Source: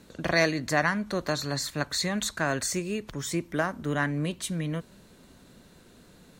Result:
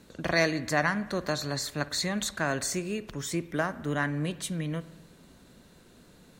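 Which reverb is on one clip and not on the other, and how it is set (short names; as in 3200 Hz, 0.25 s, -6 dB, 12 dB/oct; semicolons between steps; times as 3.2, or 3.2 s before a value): spring tank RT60 1.2 s, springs 54 ms, chirp 65 ms, DRR 16 dB; gain -1.5 dB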